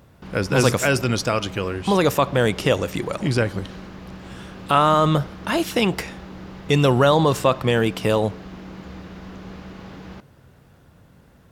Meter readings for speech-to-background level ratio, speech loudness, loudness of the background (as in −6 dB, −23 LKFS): 18.0 dB, −20.5 LKFS, −38.5 LKFS